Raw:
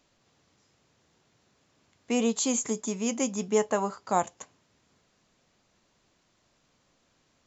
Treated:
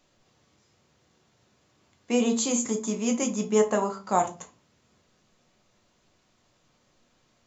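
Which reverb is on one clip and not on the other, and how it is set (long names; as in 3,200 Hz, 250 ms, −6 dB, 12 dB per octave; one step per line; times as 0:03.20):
rectangular room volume 140 cubic metres, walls furnished, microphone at 1 metre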